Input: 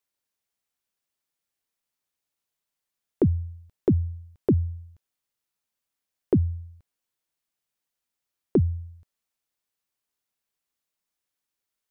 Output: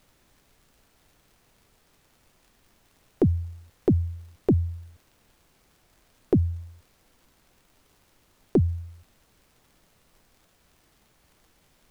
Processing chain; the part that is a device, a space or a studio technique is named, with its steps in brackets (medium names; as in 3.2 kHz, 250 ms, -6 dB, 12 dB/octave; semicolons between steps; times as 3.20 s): record under a worn stylus (tracing distortion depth 0.08 ms; crackle; pink noise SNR 32 dB)